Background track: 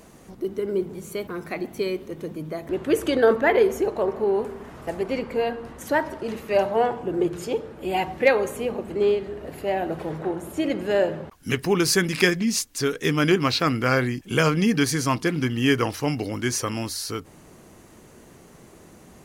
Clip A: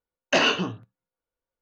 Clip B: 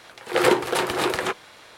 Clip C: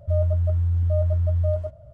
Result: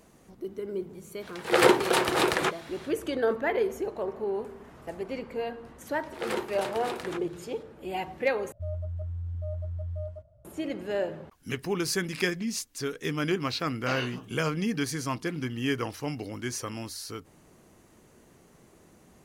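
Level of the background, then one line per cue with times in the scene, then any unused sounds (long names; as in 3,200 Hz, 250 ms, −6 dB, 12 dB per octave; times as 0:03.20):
background track −8.5 dB
0:01.18: mix in B −1 dB, fades 0.10 s
0:05.86: mix in B −13.5 dB
0:08.52: overwrite with C −13 dB
0:13.54: mix in A −14.5 dB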